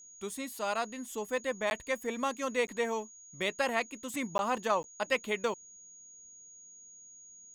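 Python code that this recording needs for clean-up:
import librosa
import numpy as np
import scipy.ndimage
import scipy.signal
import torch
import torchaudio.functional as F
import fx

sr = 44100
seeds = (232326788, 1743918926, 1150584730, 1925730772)

y = fx.fix_declip(x, sr, threshold_db=-18.0)
y = fx.notch(y, sr, hz=6700.0, q=30.0)
y = fx.fix_interpolate(y, sr, at_s=(1.7, 2.67, 4.38, 4.83), length_ms=11.0)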